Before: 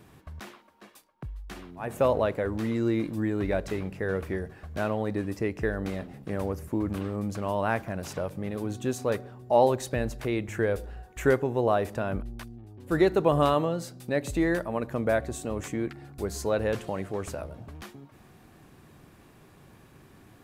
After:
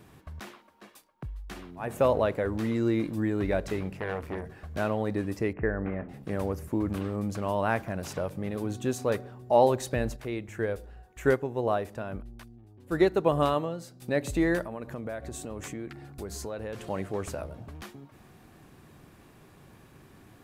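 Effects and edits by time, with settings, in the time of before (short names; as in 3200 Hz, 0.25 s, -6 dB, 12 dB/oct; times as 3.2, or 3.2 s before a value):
3.97–4.47 core saturation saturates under 910 Hz
5.53–6.09 steep low-pass 2300 Hz
10.16–14.02 upward expander, over -30 dBFS
14.65–16.9 compressor 4:1, threshold -34 dBFS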